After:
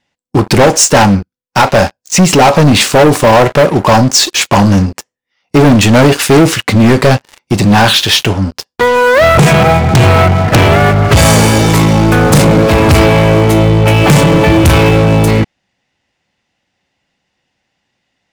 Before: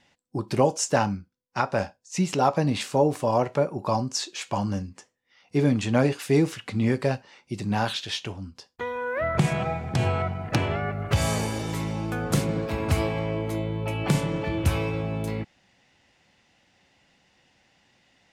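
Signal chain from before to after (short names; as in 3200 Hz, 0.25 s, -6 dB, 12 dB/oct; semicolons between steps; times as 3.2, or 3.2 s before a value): sample leveller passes 5; gain +6 dB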